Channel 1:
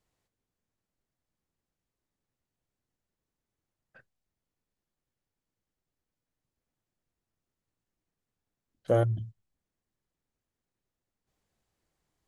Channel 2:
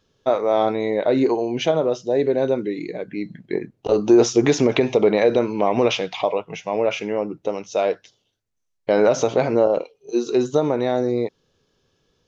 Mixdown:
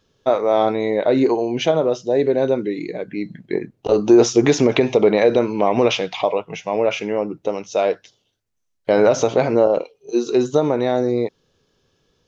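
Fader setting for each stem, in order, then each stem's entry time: −13.0, +2.0 decibels; 0.00, 0.00 seconds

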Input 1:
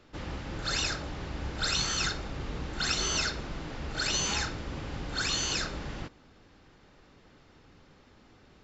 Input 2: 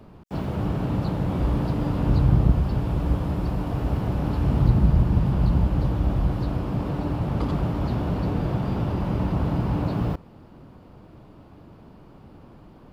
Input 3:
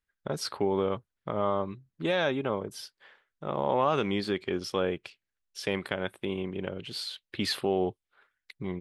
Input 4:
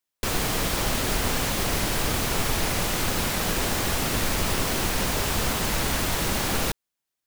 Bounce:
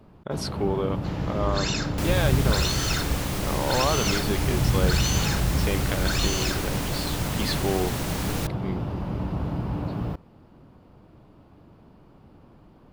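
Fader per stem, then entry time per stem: +1.0, −4.5, +0.5, −6.5 decibels; 0.90, 0.00, 0.00, 1.75 seconds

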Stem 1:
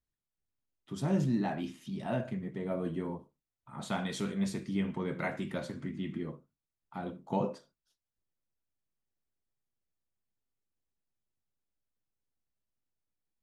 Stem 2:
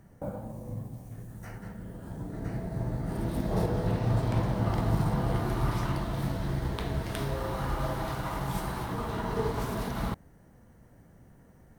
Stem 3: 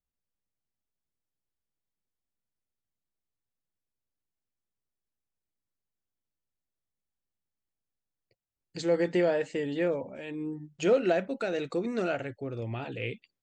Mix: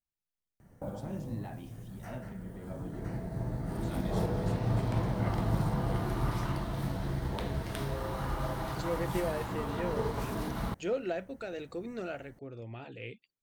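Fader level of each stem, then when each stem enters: −11.0, −3.0, −8.5 decibels; 0.00, 0.60, 0.00 seconds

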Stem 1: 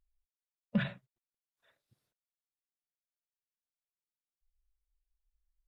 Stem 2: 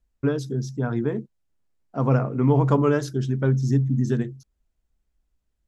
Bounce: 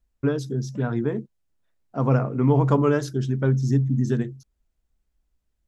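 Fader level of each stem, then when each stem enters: −11.5, 0.0 decibels; 0.00, 0.00 seconds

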